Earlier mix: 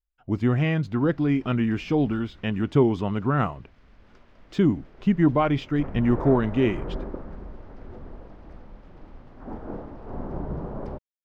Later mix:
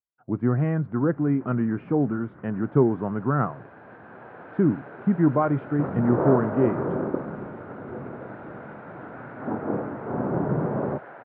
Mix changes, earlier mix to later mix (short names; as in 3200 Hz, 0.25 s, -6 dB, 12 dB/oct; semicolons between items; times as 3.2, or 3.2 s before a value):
first sound +9.0 dB; second sound: unmuted; master: add Chebyshev band-pass 120–1500 Hz, order 3